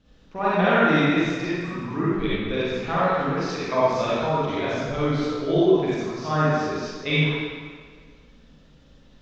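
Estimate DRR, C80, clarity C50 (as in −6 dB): −10.0 dB, −2.5 dB, −6.5 dB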